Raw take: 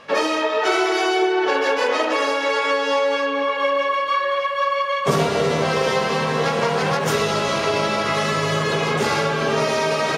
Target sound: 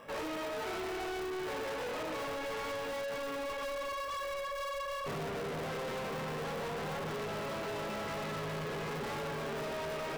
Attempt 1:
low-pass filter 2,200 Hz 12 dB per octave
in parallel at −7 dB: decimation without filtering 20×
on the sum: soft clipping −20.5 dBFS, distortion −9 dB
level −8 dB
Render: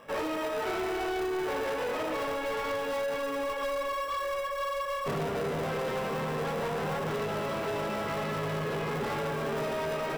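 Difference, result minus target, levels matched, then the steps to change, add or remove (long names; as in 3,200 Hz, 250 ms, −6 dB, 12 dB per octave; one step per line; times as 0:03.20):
soft clipping: distortion −4 dB
change: soft clipping −28.5 dBFS, distortion −5 dB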